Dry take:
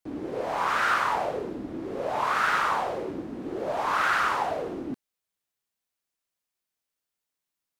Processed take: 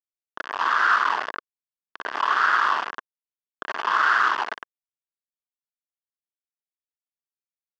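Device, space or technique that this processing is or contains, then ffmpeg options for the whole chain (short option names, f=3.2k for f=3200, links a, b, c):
hand-held game console: -af "acrusher=bits=3:mix=0:aa=0.000001,highpass=460,equalizer=f=540:t=q:w=4:g=-9,equalizer=f=770:t=q:w=4:g=-4,equalizer=f=1.1k:t=q:w=4:g=6,equalizer=f=1.6k:t=q:w=4:g=7,equalizer=f=2.3k:t=q:w=4:g=-10,equalizer=f=3.9k:t=q:w=4:g=-9,lowpass=f=4.1k:w=0.5412,lowpass=f=4.1k:w=1.3066,volume=1dB"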